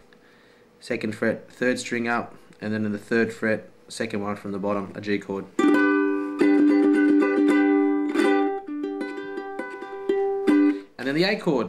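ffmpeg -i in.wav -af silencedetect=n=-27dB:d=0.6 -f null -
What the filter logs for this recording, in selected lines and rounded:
silence_start: 0.00
silence_end: 0.91 | silence_duration: 0.91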